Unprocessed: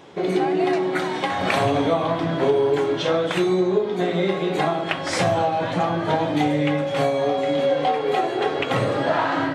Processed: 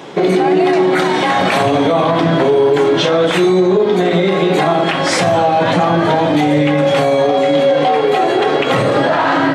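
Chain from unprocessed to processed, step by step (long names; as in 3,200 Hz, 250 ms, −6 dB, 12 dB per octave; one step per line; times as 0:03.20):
high-pass filter 120 Hz 24 dB per octave
boost into a limiter +17.5 dB
level −4 dB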